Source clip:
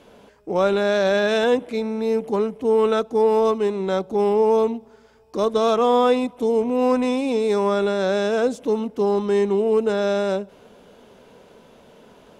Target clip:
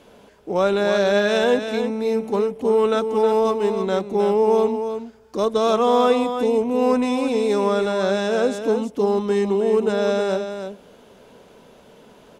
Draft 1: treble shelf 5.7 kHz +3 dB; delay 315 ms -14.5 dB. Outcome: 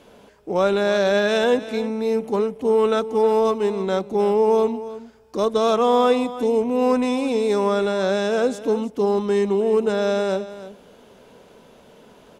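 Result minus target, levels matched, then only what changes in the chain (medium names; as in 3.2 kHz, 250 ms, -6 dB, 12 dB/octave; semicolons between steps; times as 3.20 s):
echo-to-direct -6.5 dB
change: delay 315 ms -8 dB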